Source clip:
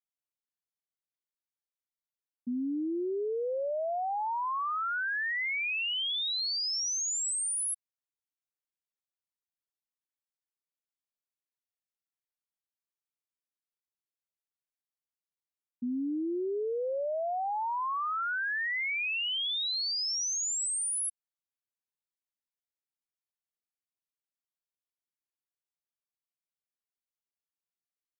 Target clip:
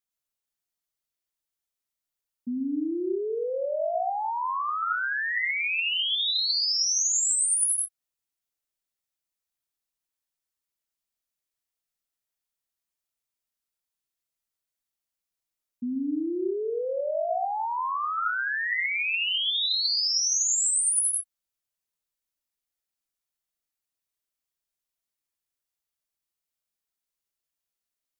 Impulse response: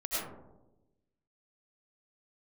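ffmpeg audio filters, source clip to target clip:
-filter_complex "[0:a]asplit=2[link_01][link_02];[link_02]lowshelf=frequency=170:gain=11[link_03];[1:a]atrim=start_sample=2205,afade=type=out:start_time=0.19:duration=0.01,atrim=end_sample=8820,highshelf=frequency=2800:gain=11[link_04];[link_03][link_04]afir=irnorm=-1:irlink=0,volume=-8dB[link_05];[link_01][link_05]amix=inputs=2:normalize=0"

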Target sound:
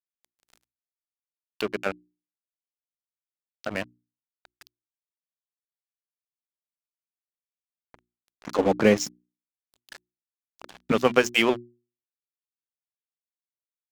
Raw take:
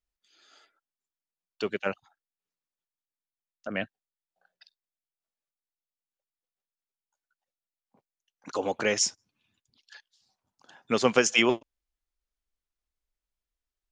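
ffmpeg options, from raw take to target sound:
ffmpeg -i in.wav -filter_complex "[0:a]asettb=1/sr,asplit=3[link_01][link_02][link_03];[link_01]atrim=end=8.584[link_04];[link_02]atrim=start=8.58:end=10.92,asetpts=PTS-STARTPTS,afade=type=in:duration=0.004:curve=qsin,afade=type=out:start_time=2.336:duration=0.004:curve=qsin,equalizer=frequency=190:width_type=o:width=2.4:gain=12.5[link_05];[link_03]atrim=start=10.916[link_06];[link_04][link_05]acrossfade=duration=0.004:curve1=hsin:curve2=qsin[link_07];[link_07][link_06]acrossfade=duration=0.004:curve1=qsin:curve2=hsin,acompressor=mode=upward:threshold=-25dB:ratio=2.5,aemphasis=mode=reproduction:type=cd,aeval=exprs='sgn(val(0))*max(abs(val(0))-0.02,0)':channel_layout=same,bandreject=frequency=60:width_type=h:width=6,bandreject=frequency=120:width_type=h:width=6,bandreject=frequency=180:width_type=h:width=6,bandreject=frequency=240:width_type=h:width=6,bandreject=frequency=300:width_type=h:width=6,bandreject=frequency=360:width_type=h:width=6,volume=3.5dB" out.wav

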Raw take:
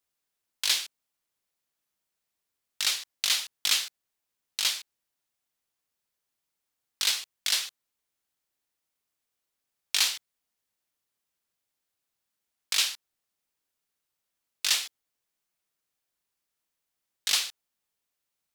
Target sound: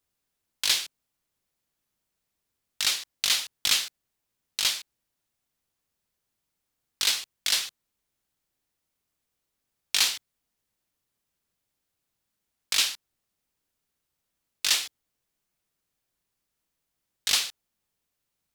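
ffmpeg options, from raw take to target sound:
ffmpeg -i in.wav -af "lowshelf=frequency=300:gain=10,volume=1.5dB" out.wav

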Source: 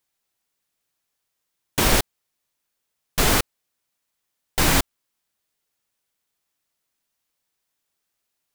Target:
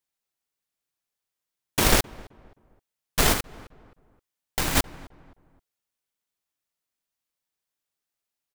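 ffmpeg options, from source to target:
ffmpeg -i in.wav -filter_complex "[0:a]asplit=2[link_01][link_02];[link_02]adelay=262,lowpass=frequency=1500:poles=1,volume=-15dB,asplit=2[link_03][link_04];[link_04]adelay=262,lowpass=frequency=1500:poles=1,volume=0.38,asplit=2[link_05][link_06];[link_06]adelay=262,lowpass=frequency=1500:poles=1,volume=0.38[link_07];[link_01][link_03][link_05][link_07]amix=inputs=4:normalize=0,aeval=exprs='0.596*(cos(1*acos(clip(val(0)/0.596,-1,1)))-cos(1*PI/2))+0.0531*(cos(7*acos(clip(val(0)/0.596,-1,1)))-cos(7*PI/2))':channel_layout=same,asplit=3[link_08][link_09][link_10];[link_08]afade=type=out:start_time=3.32:duration=0.02[link_11];[link_09]acompressor=threshold=-22dB:ratio=6,afade=type=in:start_time=3.32:duration=0.02,afade=type=out:start_time=4.75:duration=0.02[link_12];[link_10]afade=type=in:start_time=4.75:duration=0.02[link_13];[link_11][link_12][link_13]amix=inputs=3:normalize=0" out.wav

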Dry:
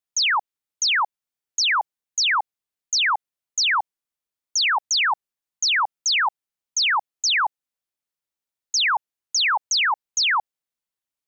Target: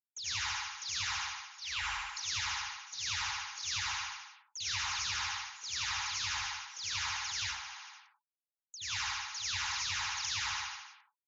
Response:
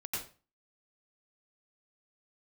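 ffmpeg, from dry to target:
-filter_complex "[0:a]asettb=1/sr,asplit=3[link_01][link_02][link_03];[link_01]atrim=end=1.044[link_04];[link_02]atrim=start=1.04:end=1.79,asetpts=PTS-STARTPTS,afade=type=in:duration=0.004:curve=qsin,afade=type=out:start_time=0.746:duration=0.004:curve=qsin,adynamicsmooth=sensitivity=1.5:basefreq=620[link_05];[link_03]atrim=start=1.786[link_06];[link_04][link_05]acrossfade=duration=0.004:curve1=hsin:curve2=qsin[link_07];[link_07][link_06]acrossfade=duration=0.004:curve1=qsin:curve2=hsin,aderivative,aecho=1:1:75|150|225|300|375|450|525|600:0.531|0.303|0.172|0.0983|0.056|0.0319|0.0182|0.0104,alimiter=limit=-24dB:level=0:latency=1:release=30,asettb=1/sr,asplit=3[link_08][link_09][link_10];[link_08]atrim=end=4.584[link_11];[link_09]atrim=start=4.58:end=5.03,asetpts=PTS-STARTPTS,afade=type=in:duration=0.004:curve=qsin,afade=type=out:start_time=0.446:duration=0.004:curve=qsin,lowshelf=frequency=380:gain=11[link_12];[link_10]atrim=start=5.026[link_13];[link_11][link_12]acrossfade=duration=0.004:curve1=hsin:curve2=qsin[link_14];[link_14][link_13]acrossfade=duration=0.004:curve1=qsin:curve2=hsin,asettb=1/sr,asplit=3[link_15][link_16][link_17];[link_15]atrim=end=7.414[link_18];[link_16]atrim=start=7.41:end=8.81,asetpts=PTS-STARTPTS,afade=type=in:duration=0.004:curve=qsin,afade=type=out:start_time=1.396:duration=0.004:curve=qsin,acrossover=split=470[link_19][link_20];[link_20]acompressor=threshold=-44dB:ratio=6[link_21];[link_19][link_21]amix=inputs=2:normalize=0[link_22];[link_17]atrim=start=8.806[link_23];[link_18][link_22]acrossfade=duration=0.004:curve1=hsin:curve2=qsin[link_24];[link_24][link_23]acrossfade=duration=0.004:curve1=qsin:curve2=hsin,asoftclip=type=tanh:threshold=-37.5dB,bandreject=frequency=60:width_type=h:width=6,bandreject=frequency=120:width_type=h:width=6,bandreject=frequency=180:width_type=h:width=6,bandreject=frequency=240:width_type=h:width=6,bandreject=frequency=300:width_type=h:width=6,bandreject=frequency=360:width_type=h:width=6,bandreject=frequency=420:width_type=h:width=6[link_25];[1:a]atrim=start_sample=2205[link_26];[link_25][link_26]afir=irnorm=-1:irlink=0,afftfilt=real='re*gte(hypot(re,im),0.000355)':imag='im*gte(hypot(re,im),0.000355)':win_size=1024:overlap=0.75,volume=2dB" -ar 16000 -c:a aac -b:a 24k

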